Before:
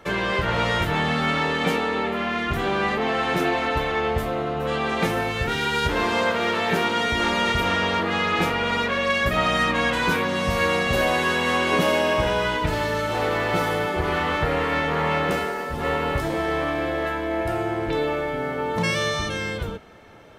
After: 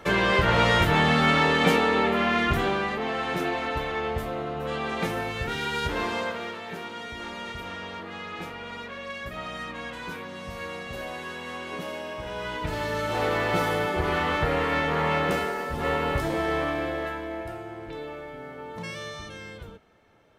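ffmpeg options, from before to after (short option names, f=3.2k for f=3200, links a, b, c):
-af "volume=14.5dB,afade=t=out:st=2.45:d=0.41:silence=0.421697,afade=t=out:st=6.02:d=0.58:silence=0.354813,afade=t=in:st=12.22:d=1.02:silence=0.237137,afade=t=out:st=16.57:d=1.04:silence=0.281838"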